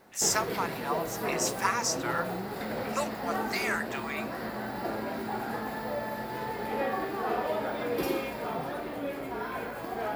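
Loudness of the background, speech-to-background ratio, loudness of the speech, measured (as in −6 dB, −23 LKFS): −34.0 LKFS, 2.0 dB, −32.0 LKFS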